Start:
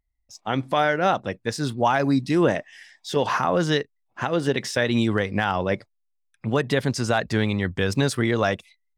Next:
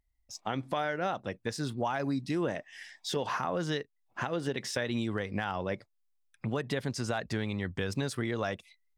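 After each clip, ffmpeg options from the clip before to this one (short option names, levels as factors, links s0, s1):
-af "acompressor=threshold=0.02:ratio=2.5"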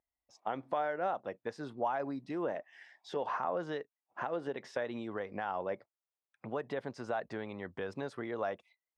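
-af "bandpass=f=720:t=q:w=0.97:csg=0"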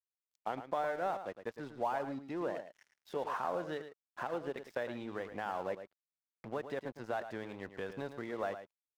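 -af "aeval=exprs='sgn(val(0))*max(abs(val(0))-0.00251,0)':c=same,aecho=1:1:109:0.299,volume=0.891"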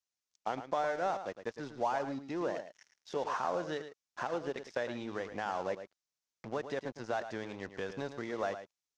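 -af "lowpass=f=6100:t=q:w=2.7,volume=1.26"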